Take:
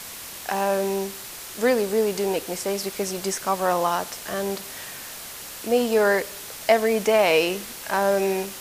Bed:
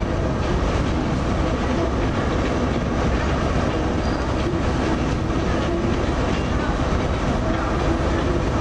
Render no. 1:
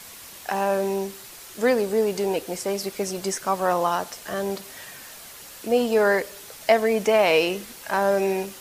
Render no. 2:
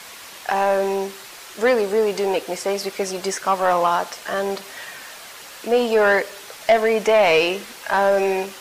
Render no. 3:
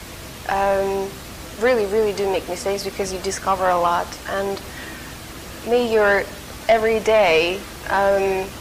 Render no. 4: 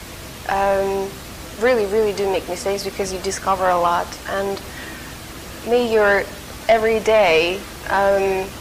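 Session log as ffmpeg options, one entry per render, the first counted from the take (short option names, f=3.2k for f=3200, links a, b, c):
-af "afftdn=nr=6:nf=-38"
-filter_complex "[0:a]asplit=2[a][b];[b]highpass=f=720:p=1,volume=14dB,asoftclip=type=tanh:threshold=-5.5dB[c];[a][c]amix=inputs=2:normalize=0,lowpass=f=3k:p=1,volume=-6dB"
-filter_complex "[1:a]volume=-16.5dB[a];[0:a][a]amix=inputs=2:normalize=0"
-af "volume=1dB"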